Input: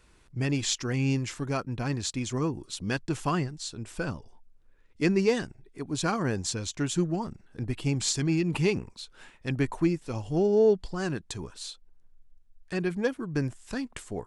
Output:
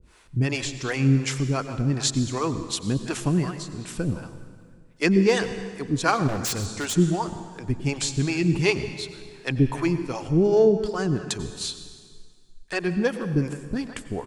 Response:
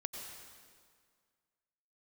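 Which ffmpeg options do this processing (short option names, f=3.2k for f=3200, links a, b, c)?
-filter_complex "[0:a]asplit=2[a][b];[b]adelay=160,highpass=300,lowpass=3.4k,asoftclip=type=hard:threshold=-20dB,volume=-16dB[c];[a][c]amix=inputs=2:normalize=0,acrossover=split=410[d][e];[d]aeval=exprs='val(0)*(1-1/2+1/2*cos(2*PI*2.7*n/s))':c=same[f];[e]aeval=exprs='val(0)*(1-1/2-1/2*cos(2*PI*2.7*n/s))':c=same[g];[f][g]amix=inputs=2:normalize=0,asplit=2[h][i];[1:a]atrim=start_sample=2205[j];[i][j]afir=irnorm=-1:irlink=0,volume=-2dB[k];[h][k]amix=inputs=2:normalize=0,asplit=3[l][m][n];[l]afade=t=out:st=6.27:d=0.02[o];[m]aeval=exprs='0.0447*(abs(mod(val(0)/0.0447+3,4)-2)-1)':c=same,afade=t=in:st=6.27:d=0.02,afade=t=out:st=6.95:d=0.02[p];[n]afade=t=in:st=6.95:d=0.02[q];[o][p][q]amix=inputs=3:normalize=0,volume=5.5dB"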